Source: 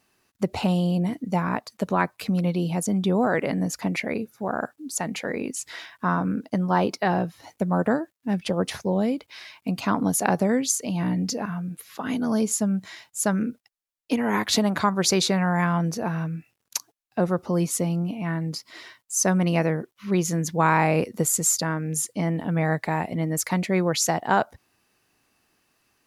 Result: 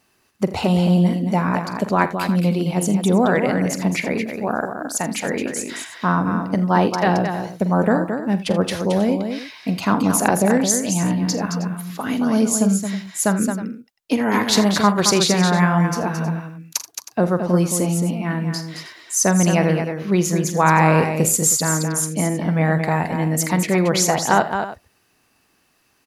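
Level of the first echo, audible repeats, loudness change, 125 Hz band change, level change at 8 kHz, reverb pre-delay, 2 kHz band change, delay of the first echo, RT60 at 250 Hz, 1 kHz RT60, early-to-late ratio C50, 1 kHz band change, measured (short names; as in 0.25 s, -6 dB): -13.5 dB, 4, +5.5 dB, +6.0 dB, +5.5 dB, none, +5.5 dB, 45 ms, none, none, none, +5.5 dB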